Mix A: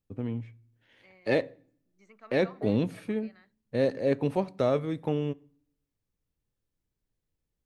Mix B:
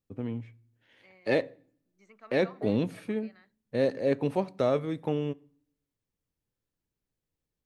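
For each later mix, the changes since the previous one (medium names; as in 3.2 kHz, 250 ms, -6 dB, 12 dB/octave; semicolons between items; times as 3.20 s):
master: add bass shelf 82 Hz -8 dB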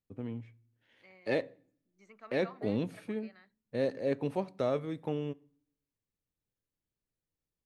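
first voice -5.0 dB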